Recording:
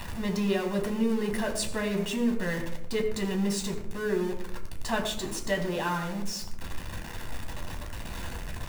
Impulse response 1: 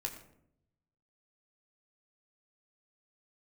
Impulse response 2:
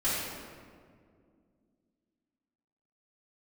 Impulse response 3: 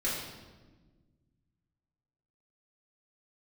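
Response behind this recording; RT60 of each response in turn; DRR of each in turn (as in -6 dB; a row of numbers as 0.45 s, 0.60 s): 1; 0.70 s, 2.1 s, 1.3 s; 2.5 dB, -12.0 dB, -8.5 dB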